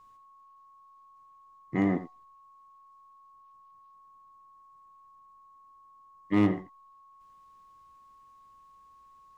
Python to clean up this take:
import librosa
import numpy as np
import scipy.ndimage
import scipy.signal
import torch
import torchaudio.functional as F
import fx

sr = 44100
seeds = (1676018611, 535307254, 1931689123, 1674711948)

y = fx.fix_declip(x, sr, threshold_db=-16.0)
y = fx.notch(y, sr, hz=1100.0, q=30.0)
y = fx.fix_echo_inverse(y, sr, delay_ms=87, level_db=-13.5)